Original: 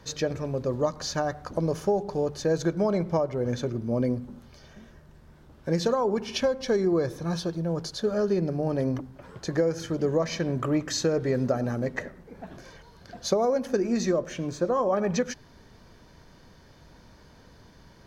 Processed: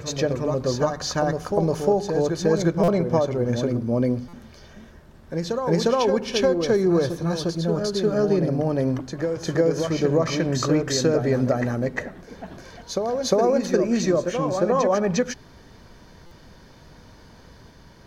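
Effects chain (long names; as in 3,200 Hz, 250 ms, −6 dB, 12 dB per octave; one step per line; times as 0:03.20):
backwards echo 354 ms −5.5 dB
buffer that repeats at 0:02.83/0:04.28/0:16.26, samples 256, times 8
level +4 dB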